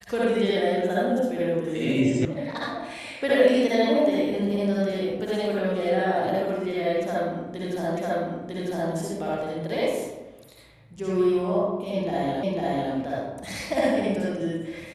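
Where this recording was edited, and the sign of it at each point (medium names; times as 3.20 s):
2.25 s: sound stops dead
7.97 s: repeat of the last 0.95 s
12.43 s: repeat of the last 0.5 s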